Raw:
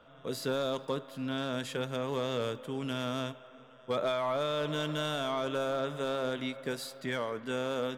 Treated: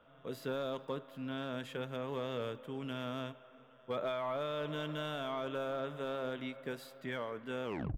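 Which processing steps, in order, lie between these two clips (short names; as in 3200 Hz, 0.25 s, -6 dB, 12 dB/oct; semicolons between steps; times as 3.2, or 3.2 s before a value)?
tape stop at the end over 0.34 s; band shelf 6600 Hz -8.5 dB; gain -5.5 dB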